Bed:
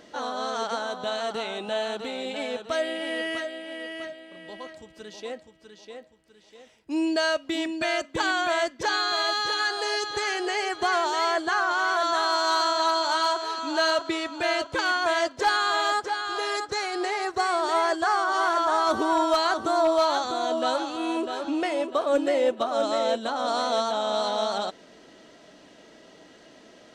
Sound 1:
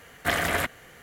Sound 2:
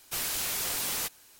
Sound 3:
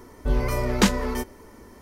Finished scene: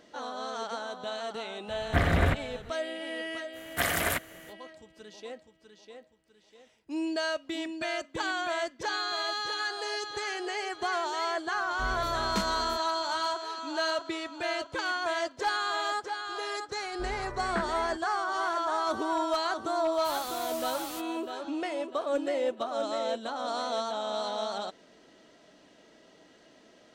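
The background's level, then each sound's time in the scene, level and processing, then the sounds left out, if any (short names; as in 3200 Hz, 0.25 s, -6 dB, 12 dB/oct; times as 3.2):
bed -6.5 dB
1.68 add 1 -2.5 dB + RIAA curve playback
3.52 add 1 -4 dB, fades 0.05 s + high shelf 7000 Hz +9.5 dB
11.54 add 3 -14 dB
16.74 add 3 -17 dB + synth low-pass 1600 Hz, resonance Q 4.4
19.93 add 2 -11 dB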